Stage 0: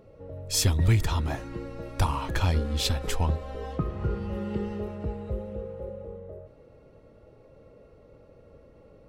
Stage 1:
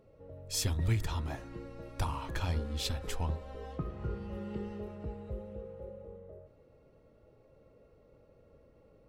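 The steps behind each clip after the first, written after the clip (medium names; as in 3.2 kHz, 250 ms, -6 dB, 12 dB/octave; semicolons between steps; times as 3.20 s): de-hum 95.98 Hz, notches 18; trim -8 dB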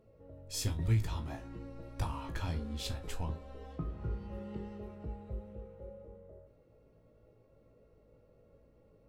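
bass shelf 450 Hz +3.5 dB; feedback comb 55 Hz, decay 0.19 s, harmonics all, mix 90%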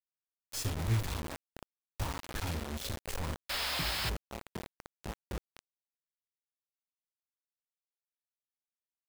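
painted sound noise, 3.49–4.10 s, 550–5400 Hz -34 dBFS; bit crusher 6-bit; trim -1.5 dB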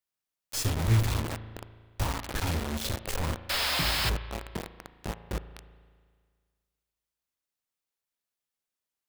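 spring tank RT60 1.8 s, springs 36 ms, chirp 65 ms, DRR 12.5 dB; trim +6 dB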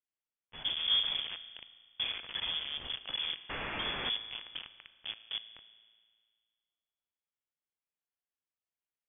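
frequency inversion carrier 3.4 kHz; trim -7.5 dB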